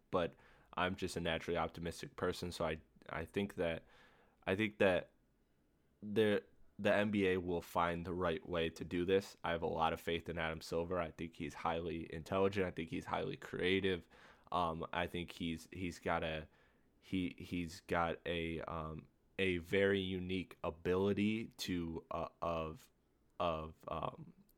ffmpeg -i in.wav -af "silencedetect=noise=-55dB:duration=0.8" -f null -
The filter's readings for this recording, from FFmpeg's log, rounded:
silence_start: 5.06
silence_end: 6.03 | silence_duration: 0.97